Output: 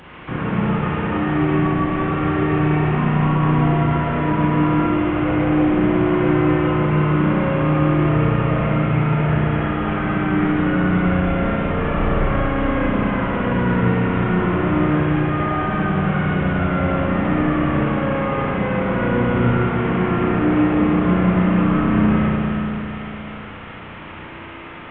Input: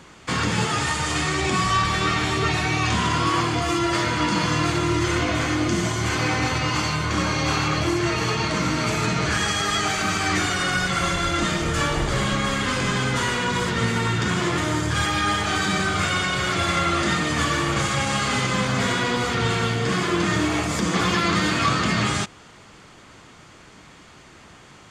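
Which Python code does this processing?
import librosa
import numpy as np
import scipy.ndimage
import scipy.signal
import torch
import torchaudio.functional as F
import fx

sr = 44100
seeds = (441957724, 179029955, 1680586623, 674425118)

y = fx.delta_mod(x, sr, bps=16000, step_db=-36.5)
y = fx.rev_spring(y, sr, rt60_s=3.6, pass_ms=(33, 57), chirp_ms=80, drr_db=-6.0)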